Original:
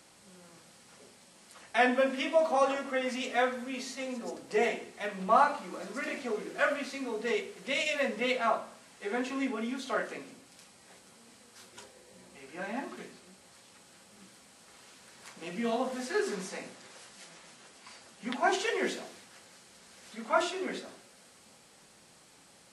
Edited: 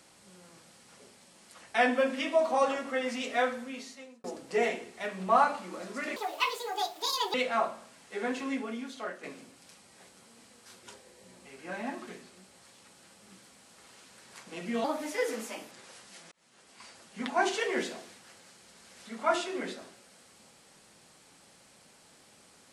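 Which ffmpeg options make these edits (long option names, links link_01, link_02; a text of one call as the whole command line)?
ffmpeg -i in.wav -filter_complex "[0:a]asplit=8[link_01][link_02][link_03][link_04][link_05][link_06][link_07][link_08];[link_01]atrim=end=4.24,asetpts=PTS-STARTPTS,afade=type=out:start_time=3.52:duration=0.72[link_09];[link_02]atrim=start=4.24:end=6.164,asetpts=PTS-STARTPTS,afade=type=in:duration=0.004:curve=hsin[link_10];[link_03]atrim=start=6.16:end=8.24,asetpts=PTS-STARTPTS,asetrate=77616,aresample=44100,atrim=end_sample=52118,asetpts=PTS-STARTPTS[link_11];[link_04]atrim=start=8.236:end=10.13,asetpts=PTS-STARTPTS,afade=type=out:start_time=1.054:duration=0.84:silence=0.354813[link_12];[link_05]atrim=start=10.13:end=15.744,asetpts=PTS-STARTPTS,afade=type=in:duration=0.004:curve=hsin:silence=0.354813[link_13];[link_06]atrim=start=15.74:end=16.78,asetpts=PTS-STARTPTS,asetrate=52479,aresample=44100,atrim=end_sample=38541,asetpts=PTS-STARTPTS[link_14];[link_07]atrim=start=16.776:end=17.38,asetpts=PTS-STARTPTS,afade=type=out:start_time=0.6:duration=0.004:curve=hsin[link_15];[link_08]atrim=start=17.38,asetpts=PTS-STARTPTS,afade=type=in:duration=0.52[link_16];[link_09][link_10]concat=n=2:v=0:a=1[link_17];[link_17][link_11]acrossfade=duration=0.004:curve1=hsin:curve2=hsin[link_18];[link_12][link_13]concat=n=2:v=0:a=1[link_19];[link_18][link_19]acrossfade=duration=0.004:curve1=hsin:curve2=hsin[link_20];[link_20][link_14]acrossfade=duration=0.004:curve1=hsin:curve2=hsin[link_21];[link_15][link_16]concat=n=2:v=0:a=1[link_22];[link_21][link_22]acrossfade=duration=0.004:curve1=hsin:curve2=hsin" out.wav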